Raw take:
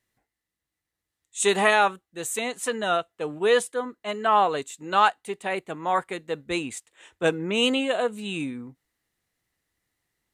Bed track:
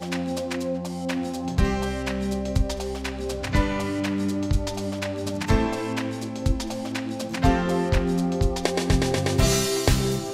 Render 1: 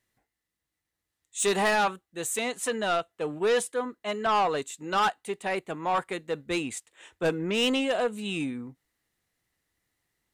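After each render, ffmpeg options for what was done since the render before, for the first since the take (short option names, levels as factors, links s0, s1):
-af "asoftclip=type=tanh:threshold=0.112"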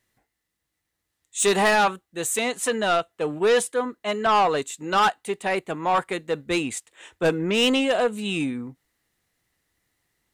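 -af "volume=1.78"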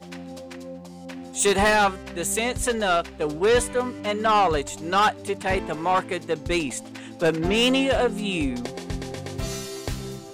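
-filter_complex "[1:a]volume=0.316[s0];[0:a][s0]amix=inputs=2:normalize=0"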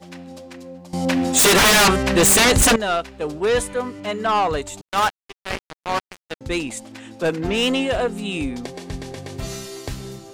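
-filter_complex "[0:a]asettb=1/sr,asplit=3[s0][s1][s2];[s0]atrim=end=0.934[s3];[s1]atrim=start=0.93:end=2.76,asetpts=PTS-STARTPTS,afade=t=in:d=0.004:c=qsin,afade=t=out:st=1.826:d=0.004:c=qsin,aeval=exprs='0.299*sin(PI/2*5.01*val(0)/0.299)':c=same[s4];[s2]atrim=start=2.756[s5];[s3][s4]acrossfade=d=0.004:c1=hsin:c2=qsin[s6];[s6][s5]acrossfade=d=0.004:c1=qsin:c2=hsin,asettb=1/sr,asplit=3[s7][s8][s9];[s7]atrim=end=4.814[s10];[s8]atrim=start=4.81:end=6.41,asetpts=PTS-STARTPTS,afade=t=in:d=0.004:c=qsin,afade=t=out:st=1.596:d=0.004:c=qsin,acrusher=bits=2:mix=0:aa=0.5[s11];[s9]atrim=start=6.406[s12];[s10][s11]acrossfade=d=0.004:c1=hsin:c2=qsin[s13];[s13][s12]acrossfade=d=0.004:c1=qsin:c2=hsin"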